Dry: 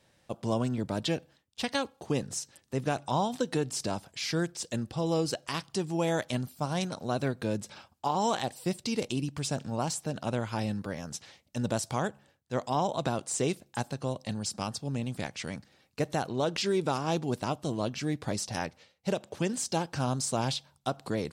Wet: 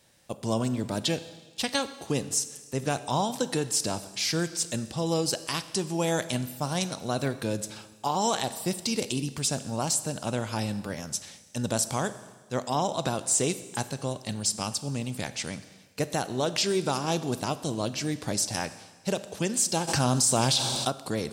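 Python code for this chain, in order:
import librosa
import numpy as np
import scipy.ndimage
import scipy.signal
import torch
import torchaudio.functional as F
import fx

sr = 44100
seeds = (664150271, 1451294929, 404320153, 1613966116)

y = fx.high_shelf(x, sr, hz=5100.0, db=11.5)
y = fx.rev_schroeder(y, sr, rt60_s=1.4, comb_ms=28, drr_db=13.0)
y = fx.env_flatten(y, sr, amount_pct=70, at=(19.87, 20.87), fade=0.02)
y = y * librosa.db_to_amplitude(1.0)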